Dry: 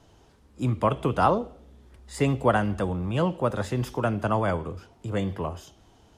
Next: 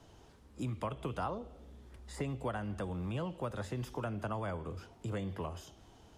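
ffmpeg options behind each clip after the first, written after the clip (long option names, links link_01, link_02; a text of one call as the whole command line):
ffmpeg -i in.wav -filter_complex "[0:a]acrossover=split=88|1700[link_01][link_02][link_03];[link_01]acompressor=threshold=-46dB:ratio=4[link_04];[link_02]acompressor=threshold=-36dB:ratio=4[link_05];[link_03]acompressor=threshold=-50dB:ratio=4[link_06];[link_04][link_05][link_06]amix=inputs=3:normalize=0,volume=-2dB" out.wav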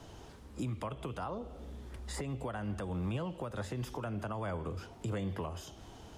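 ffmpeg -i in.wav -af "alimiter=level_in=12dB:limit=-24dB:level=0:latency=1:release=382,volume=-12dB,volume=7.5dB" out.wav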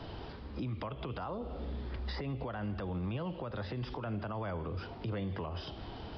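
ffmpeg -i in.wav -af "aresample=11025,aresample=44100,alimiter=level_in=13dB:limit=-24dB:level=0:latency=1:release=161,volume=-13dB,volume=7dB" out.wav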